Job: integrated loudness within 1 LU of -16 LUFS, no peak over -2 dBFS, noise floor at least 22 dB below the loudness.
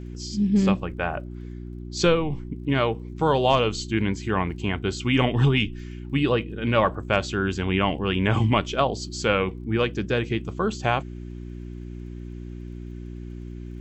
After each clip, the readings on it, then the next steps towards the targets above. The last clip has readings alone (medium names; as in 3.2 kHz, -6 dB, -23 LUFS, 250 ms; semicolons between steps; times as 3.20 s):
tick rate 33 per s; hum 60 Hz; highest harmonic 360 Hz; hum level -33 dBFS; loudness -24.0 LUFS; peak level -6.5 dBFS; loudness target -16.0 LUFS
-> de-click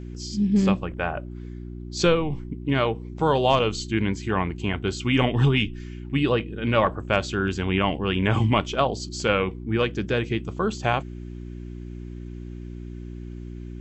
tick rate 0.072 per s; hum 60 Hz; highest harmonic 360 Hz; hum level -33 dBFS
-> de-hum 60 Hz, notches 6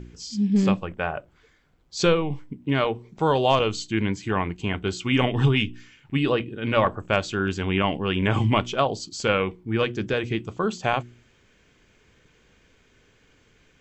hum not found; loudness -24.5 LUFS; peak level -7.0 dBFS; loudness target -16.0 LUFS
-> trim +8.5 dB; peak limiter -2 dBFS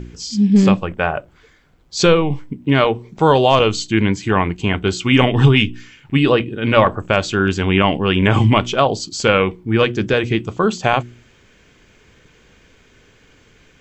loudness -16.5 LUFS; peak level -2.0 dBFS; noise floor -52 dBFS